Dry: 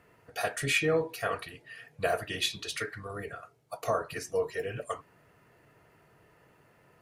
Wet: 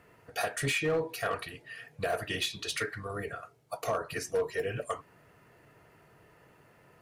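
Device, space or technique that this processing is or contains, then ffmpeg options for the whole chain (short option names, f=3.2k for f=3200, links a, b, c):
limiter into clipper: -af "alimiter=limit=-21.5dB:level=0:latency=1:release=217,asoftclip=type=hard:threshold=-25.5dB,volume=2dB"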